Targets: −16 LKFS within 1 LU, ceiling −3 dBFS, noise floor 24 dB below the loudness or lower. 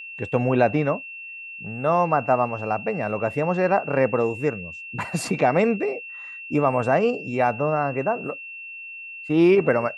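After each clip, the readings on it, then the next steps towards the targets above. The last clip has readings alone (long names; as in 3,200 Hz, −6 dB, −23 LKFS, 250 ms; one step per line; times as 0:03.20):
interfering tone 2,700 Hz; level of the tone −35 dBFS; integrated loudness −22.5 LKFS; sample peak −5.0 dBFS; target loudness −16.0 LKFS
→ notch filter 2,700 Hz, Q 30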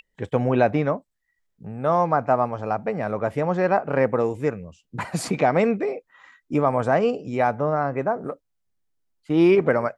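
interfering tone none found; integrated loudness −22.5 LKFS; sample peak −5.0 dBFS; target loudness −16.0 LKFS
→ level +6.5 dB
brickwall limiter −3 dBFS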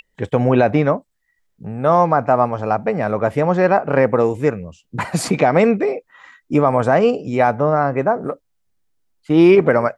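integrated loudness −16.5 LKFS; sample peak −3.0 dBFS; background noise floor −69 dBFS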